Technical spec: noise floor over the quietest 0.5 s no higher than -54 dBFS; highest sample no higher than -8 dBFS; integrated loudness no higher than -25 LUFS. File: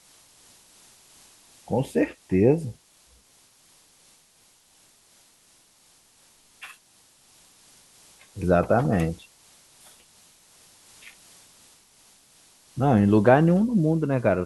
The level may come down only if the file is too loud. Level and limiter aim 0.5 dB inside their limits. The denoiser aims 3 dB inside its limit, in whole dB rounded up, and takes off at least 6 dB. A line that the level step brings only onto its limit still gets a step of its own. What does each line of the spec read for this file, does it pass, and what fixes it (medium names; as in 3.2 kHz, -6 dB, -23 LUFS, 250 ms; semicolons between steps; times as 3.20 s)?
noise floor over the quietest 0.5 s -60 dBFS: pass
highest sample -3.5 dBFS: fail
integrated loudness -22.0 LUFS: fail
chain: trim -3.5 dB; peak limiter -8.5 dBFS